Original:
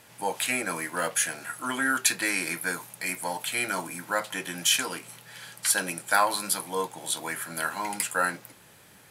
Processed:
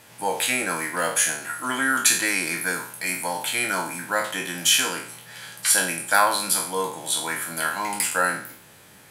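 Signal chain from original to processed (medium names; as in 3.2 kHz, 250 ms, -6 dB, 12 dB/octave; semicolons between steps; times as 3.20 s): spectral sustain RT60 0.52 s; trim +2.5 dB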